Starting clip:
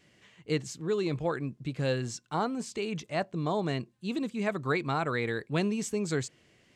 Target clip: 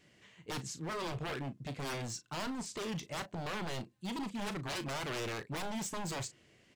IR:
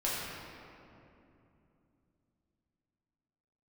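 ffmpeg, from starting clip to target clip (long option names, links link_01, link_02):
-filter_complex "[0:a]aeval=exprs='0.0266*(abs(mod(val(0)/0.0266+3,4)-2)-1)':channel_layout=same,asplit=2[link_01][link_02];[link_02]adelay=36,volume=-12dB[link_03];[link_01][link_03]amix=inputs=2:normalize=0,volume=-2dB"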